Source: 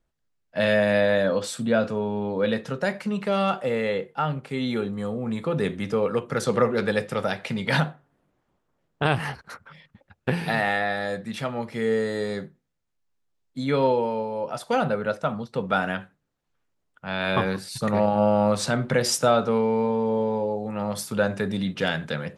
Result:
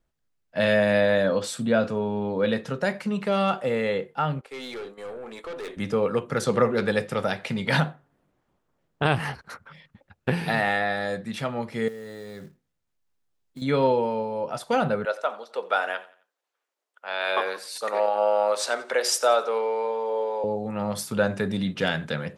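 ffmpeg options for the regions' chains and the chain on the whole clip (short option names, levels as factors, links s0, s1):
-filter_complex "[0:a]asettb=1/sr,asplit=3[s0][s1][s2];[s0]atrim=end=4.414[s3];[s1]atrim=start=4.41:end=5.77,asetpts=PTS-STARTPTS,afade=t=in:d=0.004:c=qsin,afade=t=out:st=1.356:d=0.004:c=qsin,highpass=f=360:w=0.5412,highpass=f=360:w=1.3066,agate=range=0.447:threshold=0.00631:ratio=16:release=100:detection=peak,aeval=exprs='(tanh(39.8*val(0)+0.2)-tanh(0.2))/39.8':c=same[s4];[s2]atrim=start=5.766[s5];[s3][s4]acrossfade=d=0.004:c1=hsin:c2=qsin[s6];[s6][s5]acrossfade=d=0.004:c1=qsin:c2=hsin,asettb=1/sr,asplit=3[s7][s8][s9];[s7]atrim=end=11.884[s10];[s8]atrim=start=11.88:end=13.62,asetpts=PTS-STARTPTS,afade=t=in:d=0.004:c=qsin,afade=t=out:st=1.736:d=0.004:c=qsin,equalizer=f=96:w=4.1:g=3.5,acompressor=threshold=0.0158:ratio=6:attack=3.2:release=140:knee=1:detection=peak,acrusher=bits=5:mode=log:mix=0:aa=0.000001[s11];[s9]atrim=start=13.616[s12];[s10][s11]acrossfade=d=0.004:c1=hsin:c2=qsin[s13];[s13][s12]acrossfade=d=0.004:c1=qsin:c2=hsin,asettb=1/sr,asplit=3[s14][s15][s16];[s14]atrim=end=15.054[s17];[s15]atrim=start=15.05:end=20.44,asetpts=PTS-STARTPTS,afade=t=in:d=0.004:c=qsin,afade=t=out:st=5.386:d=0.004:c=qsin,highpass=f=430:w=0.5412,highpass=f=430:w=1.3066,aecho=1:1:88|176|264:0.119|0.0428|0.0154,atrim=end_sample=237699[s18];[s16]atrim=start=20.436[s19];[s17][s18]acrossfade=d=0.004:c1=hsin:c2=qsin[s20];[s20][s19]acrossfade=d=0.004:c1=qsin:c2=hsin"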